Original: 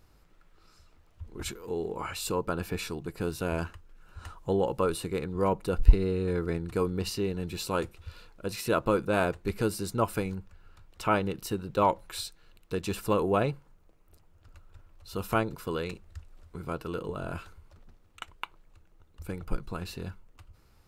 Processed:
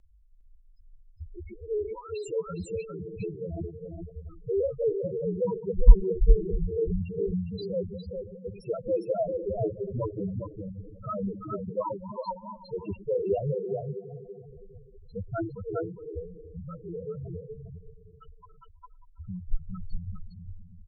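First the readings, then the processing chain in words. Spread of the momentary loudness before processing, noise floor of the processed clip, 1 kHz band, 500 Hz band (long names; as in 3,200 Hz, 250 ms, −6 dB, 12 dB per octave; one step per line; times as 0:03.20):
16 LU, −55 dBFS, −8.0 dB, +1.0 dB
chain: feedback delay that plays each chunk backwards 164 ms, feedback 76%, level −12 dB
spectral peaks only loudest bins 2
on a send: single-tap delay 408 ms −5.5 dB
on the sum: rotating-speaker cabinet horn 5.5 Hz
level +6 dB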